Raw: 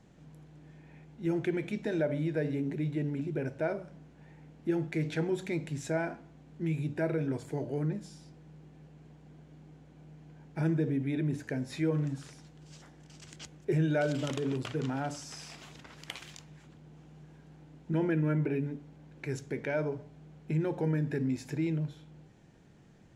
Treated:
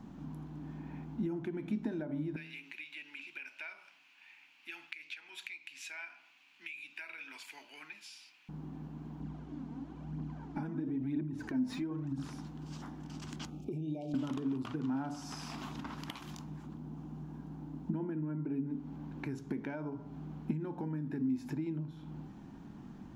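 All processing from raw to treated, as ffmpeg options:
-filter_complex "[0:a]asettb=1/sr,asplit=3[s0][s1][s2];[s0]atrim=end=2.364[s3];[s1]atrim=start=2.36:end=8.49,asetpts=PTS-STARTPTS,afade=t=in:d=0.004:c=qsin,afade=t=out:st=6.126:d=0.004:c=qsin,highpass=f=2500:t=q:w=6.1,equalizer=f=4600:t=o:w=0.22:g=3.5[s4];[s2]atrim=start=8.486[s5];[s3][s4]acrossfade=d=0.004:c1=hsin:c2=qsin[s6];[s6][s5]acrossfade=d=0.004:c1=qsin:c2=hsin,asettb=1/sr,asplit=3[s7][s8][s9];[s7]atrim=end=9.204[s10];[s8]atrim=start=9.2:end=12.25,asetpts=PTS-STARTPTS,afade=t=in:d=0.004:c=qsin,afade=t=out:st=3.046:d=0.004:c=qsin,lowpass=9300,acompressor=threshold=0.00708:ratio=3:attack=3.2:release=140:knee=1:detection=peak,aphaser=in_gain=1:out_gain=1:delay=4.6:decay=0.54:speed=1:type=triangular[s11];[s9]atrim=start=12.246[s12];[s10][s11]acrossfade=d=0.004:c1=hsin:c2=qsin[s13];[s13][s12]acrossfade=d=0.004:c1=qsin:c2=hsin,asettb=1/sr,asplit=3[s14][s15][s16];[s14]atrim=end=13.504[s17];[s15]atrim=start=13.5:end=14.14,asetpts=PTS-STARTPTS,afade=t=in:d=0.004:c=qsin,afade=t=out:st=0.636:d=0.004:c=qsin,acompressor=threshold=0.00501:ratio=2:attack=3.2:release=140:knee=1:detection=peak,asuperstop=centerf=1400:order=20:qfactor=0.97[s18];[s16]atrim=start=14.136[s19];[s17][s18]acrossfade=d=0.004:c1=hsin:c2=qsin[s20];[s20][s19]acrossfade=d=0.004:c1=qsin:c2=hsin,asettb=1/sr,asplit=3[s21][s22][s23];[s21]atrim=end=16.214[s24];[s22]atrim=start=16.21:end=18.7,asetpts=PTS-STARTPTS,afade=t=in:d=0.004:c=qsin,afade=t=out:st=2.486:d=0.004:c=qsin,equalizer=f=2500:w=0.51:g=-5.5,bandreject=f=50:t=h:w=6,bandreject=f=100:t=h:w=6[s25];[s23]atrim=start=18.696[s26];[s24][s25]acrossfade=d=0.004:c1=hsin:c2=qsin[s27];[s27][s26]acrossfade=d=0.004:c1=qsin:c2=hsin,bandreject=f=80.96:t=h:w=4,bandreject=f=161.92:t=h:w=4,bandreject=f=242.88:t=h:w=4,bandreject=f=323.84:t=h:w=4,bandreject=f=404.8:t=h:w=4,bandreject=f=485.76:t=h:w=4,bandreject=f=566.72:t=h:w=4,bandreject=f=647.68:t=h:w=4,bandreject=f=728.64:t=h:w=4,bandreject=f=809.6:t=h:w=4,bandreject=f=890.56:t=h:w=4,bandreject=f=971.52:t=h:w=4,bandreject=f=1052.48:t=h:w=4,bandreject=f=1133.44:t=h:w=4,bandreject=f=1214.4:t=h:w=4,bandreject=f=1295.36:t=h:w=4,bandreject=f=1376.32:t=h:w=4,bandreject=f=1457.28:t=h:w=4,acompressor=threshold=0.00708:ratio=12,equalizer=f=125:t=o:w=1:g=-5,equalizer=f=250:t=o:w=1:g=11,equalizer=f=500:t=o:w=1:g=-12,equalizer=f=1000:t=o:w=1:g=8,equalizer=f=2000:t=o:w=1:g=-8,equalizer=f=4000:t=o:w=1:g=-3,equalizer=f=8000:t=o:w=1:g=-11,volume=2.51"

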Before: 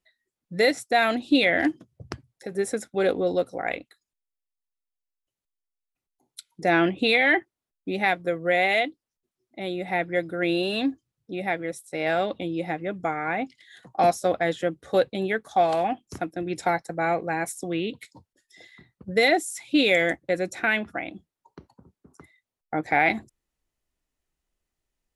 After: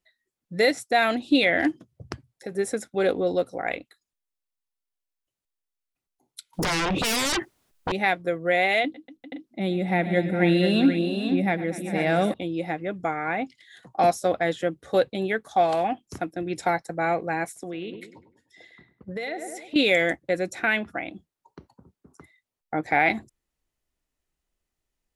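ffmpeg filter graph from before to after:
-filter_complex "[0:a]asettb=1/sr,asplit=3[s0][s1][s2];[s0]atrim=end=6.534[s3];[s1]atrim=start=6.53:end=7.92,asetpts=PTS-STARTPTS,afade=t=in:d=0.004:c=qsin,afade=t=out:st=1.386:d=0.004:c=qsin,acompressor=threshold=0.0251:ratio=5:attack=3.2:release=140:knee=1:detection=peak,aeval=exprs='0.0841*sin(PI/2*6.31*val(0)/0.0841)':c=same[s4];[s2]atrim=start=7.916[s5];[s3][s4]acrossfade=d=0.004:c1=hsin:c2=qsin[s6];[s6][s5]acrossfade=d=0.004:c1=qsin:c2=hsin,asettb=1/sr,asplit=3[s7][s8][s9];[s7]atrim=end=8.844[s10];[s8]atrim=start=8.84:end=12.34,asetpts=PTS-STARTPTS,afade=t=in:d=0.004:c=qsin,afade=t=out:st=3.496:d=0.004:c=qsin,equalizer=f=200:w=1.4:g=11,aecho=1:1:103|116|241|398|479|520:0.112|0.15|0.141|0.178|0.447|0.178,atrim=end_sample=154350[s11];[s9]atrim=start=12.336[s12];[s10][s11]acrossfade=d=0.004:c1=hsin:c2=qsin[s13];[s13][s12]acrossfade=d=0.004:c1=qsin:c2=hsin,asettb=1/sr,asplit=3[s14][s15][s16];[s14]atrim=end=17.464[s17];[s15]atrim=start=17.46:end=19.76,asetpts=PTS-STARTPTS,afade=t=in:d=0.004:c=qsin,afade=t=out:st=2.296:d=0.004:c=qsin,bass=f=250:g=-4,treble=f=4000:g=-7,asplit=2[s18][s19];[s19]adelay=101,lowpass=f=1600:p=1,volume=0.282,asplit=2[s20][s21];[s21]adelay=101,lowpass=f=1600:p=1,volume=0.46,asplit=2[s22][s23];[s23]adelay=101,lowpass=f=1600:p=1,volume=0.46,asplit=2[s24][s25];[s25]adelay=101,lowpass=f=1600:p=1,volume=0.46,asplit=2[s26][s27];[s27]adelay=101,lowpass=f=1600:p=1,volume=0.46[s28];[s18][s20][s22][s24][s26][s28]amix=inputs=6:normalize=0,atrim=end_sample=101430,acompressor=threshold=0.0316:ratio=4:attack=3.2:release=140:knee=1:detection=peak[s29];[s16]atrim=start=19.756[s30];[s17][s29]acrossfade=d=0.004:c1=hsin:c2=qsin[s31];[s31][s30]acrossfade=d=0.004:c1=qsin:c2=hsin"

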